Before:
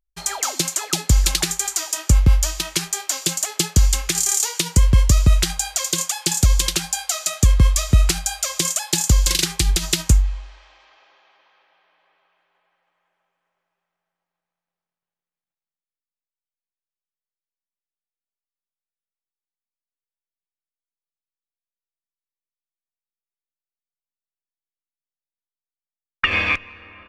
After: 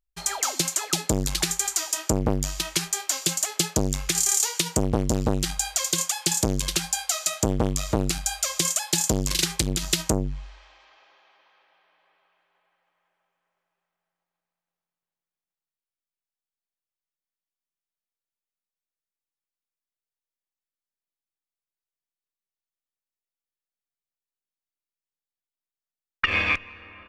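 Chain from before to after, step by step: core saturation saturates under 560 Hz; gain -2.5 dB

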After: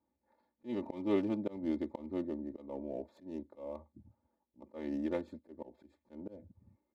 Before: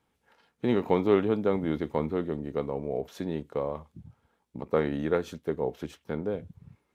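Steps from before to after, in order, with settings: Wiener smoothing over 15 samples; HPF 80 Hz; bell 1400 Hz -12 dB 0.6 oct; comb 3.4 ms, depth 99%; auto swell 0.205 s; gain -8.5 dB

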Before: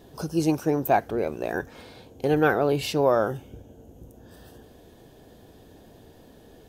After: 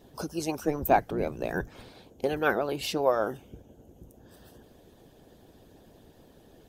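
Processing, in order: 0.59–1.9 octaver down 1 oct, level +1 dB; harmonic-percussive split harmonic -13 dB

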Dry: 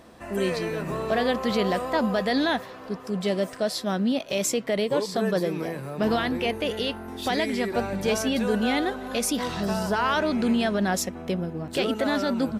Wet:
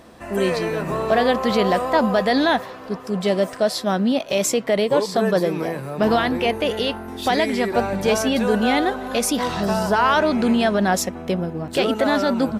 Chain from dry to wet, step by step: dynamic EQ 840 Hz, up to +4 dB, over -37 dBFS, Q 0.89; gain +4 dB

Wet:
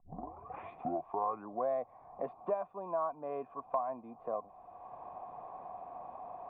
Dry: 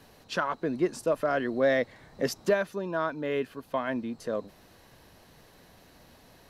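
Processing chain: tape start at the beginning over 1.70 s; vocal tract filter a; three-band squash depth 70%; gain +8.5 dB

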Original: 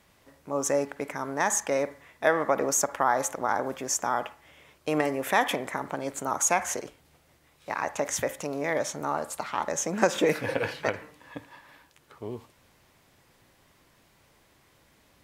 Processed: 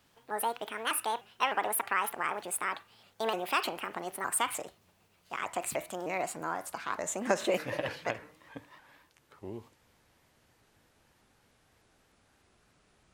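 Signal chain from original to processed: speed glide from 164% -> 68%; shaped vibrato saw up 3.3 Hz, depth 160 cents; gain -5.5 dB

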